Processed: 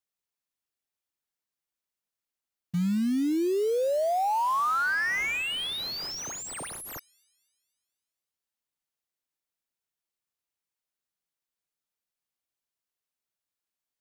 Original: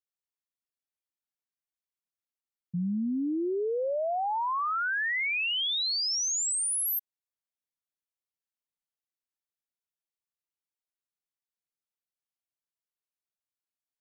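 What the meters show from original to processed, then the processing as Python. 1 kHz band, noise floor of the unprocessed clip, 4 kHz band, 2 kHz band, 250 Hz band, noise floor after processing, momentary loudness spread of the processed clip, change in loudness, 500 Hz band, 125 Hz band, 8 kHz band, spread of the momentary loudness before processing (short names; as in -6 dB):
+3.5 dB, under -85 dBFS, -4.0 dB, +1.5 dB, +3.5 dB, under -85 dBFS, 11 LU, +0.5 dB, +3.5 dB, +3.5 dB, -9.0 dB, 5 LU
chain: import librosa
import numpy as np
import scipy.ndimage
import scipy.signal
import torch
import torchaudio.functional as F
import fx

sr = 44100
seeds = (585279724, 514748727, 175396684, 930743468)

y = fx.echo_wet_bandpass(x, sr, ms=247, feedback_pct=46, hz=1600.0, wet_db=-15.5)
y = fx.quant_float(y, sr, bits=2)
y = fx.slew_limit(y, sr, full_power_hz=58.0)
y = F.gain(torch.from_numpy(y), 3.5).numpy()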